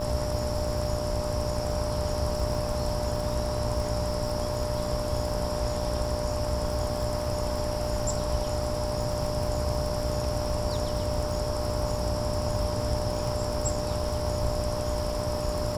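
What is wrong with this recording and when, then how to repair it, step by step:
buzz 60 Hz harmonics 18 -35 dBFS
crackle 51 per s -34 dBFS
whine 600 Hz -32 dBFS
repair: de-click; de-hum 60 Hz, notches 18; band-stop 600 Hz, Q 30

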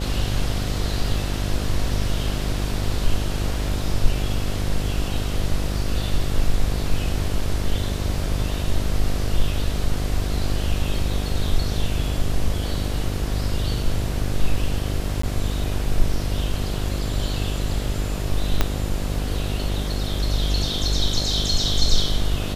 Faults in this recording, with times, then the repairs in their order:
buzz 50 Hz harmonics 15 -26 dBFS
15.22–15.23 s: dropout 14 ms
18.61 s: pop -4 dBFS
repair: de-click; de-hum 50 Hz, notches 15; interpolate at 15.22 s, 14 ms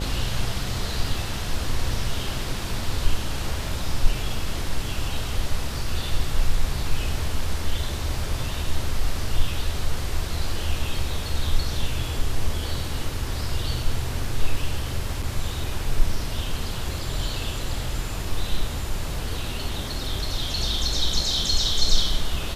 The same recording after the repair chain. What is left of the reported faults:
18.61 s: pop

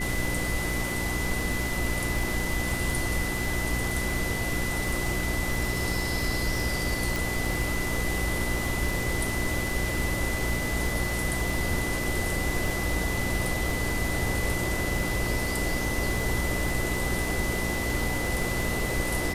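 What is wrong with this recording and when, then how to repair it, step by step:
crackle 40 per s -32 dBFS
hum 60 Hz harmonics 6 -33 dBFS
whine 2 kHz -32 dBFS
7.16 s: pop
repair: de-click; de-hum 60 Hz, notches 6; band-stop 2 kHz, Q 30

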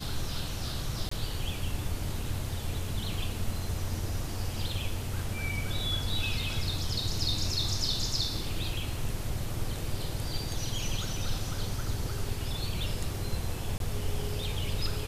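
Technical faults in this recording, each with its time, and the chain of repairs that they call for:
1.09–1.11 s: dropout 24 ms
13.78–13.80 s: dropout 22 ms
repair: interpolate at 1.09 s, 24 ms; interpolate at 13.78 s, 22 ms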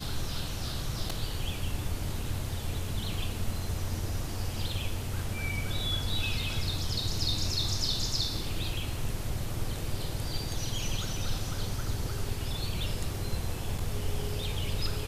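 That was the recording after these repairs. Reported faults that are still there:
nothing left

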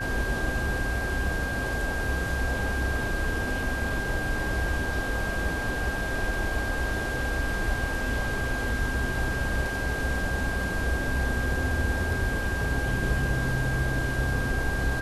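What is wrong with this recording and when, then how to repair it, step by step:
whine 1.6 kHz -31 dBFS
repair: band-stop 1.6 kHz, Q 30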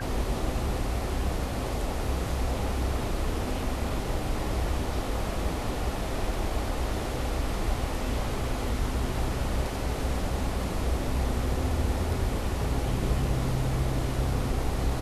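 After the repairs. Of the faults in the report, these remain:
nothing left

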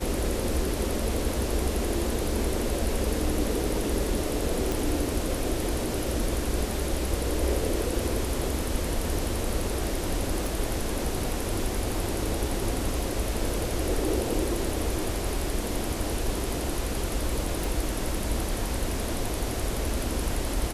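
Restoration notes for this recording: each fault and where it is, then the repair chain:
4.72 s: pop
10.46 s: pop
17.64 s: pop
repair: de-click

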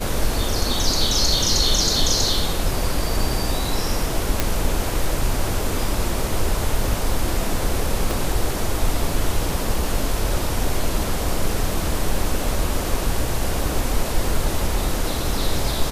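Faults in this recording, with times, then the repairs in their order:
4.40 s: pop
8.11 s: pop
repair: de-click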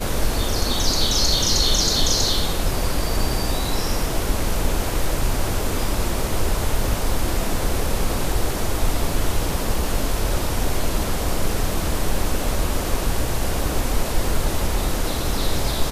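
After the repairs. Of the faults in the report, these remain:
8.11 s: pop

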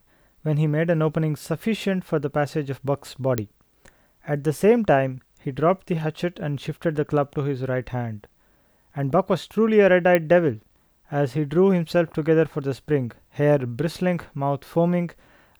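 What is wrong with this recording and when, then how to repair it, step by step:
3.38 s: pop -9 dBFS
10.15 s: pop -8 dBFS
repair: de-click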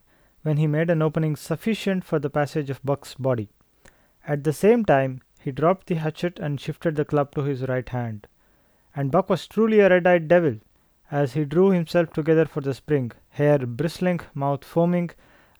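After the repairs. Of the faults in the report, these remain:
nothing left

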